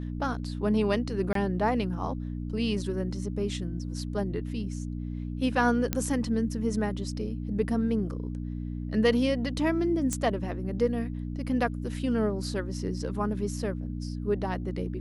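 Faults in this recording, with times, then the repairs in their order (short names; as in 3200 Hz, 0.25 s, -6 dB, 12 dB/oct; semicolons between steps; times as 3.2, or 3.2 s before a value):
hum 60 Hz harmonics 5 -34 dBFS
1.33–1.35 gap 23 ms
5.93 pop -11 dBFS
10.13 pop -15 dBFS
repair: de-click; de-hum 60 Hz, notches 5; interpolate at 1.33, 23 ms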